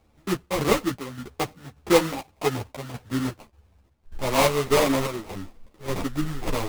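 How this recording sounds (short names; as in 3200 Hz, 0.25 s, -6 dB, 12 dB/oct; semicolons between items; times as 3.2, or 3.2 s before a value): aliases and images of a low sample rate 1600 Hz, jitter 20%; chopped level 1.7 Hz, depth 60%, duty 60%; a shimmering, thickened sound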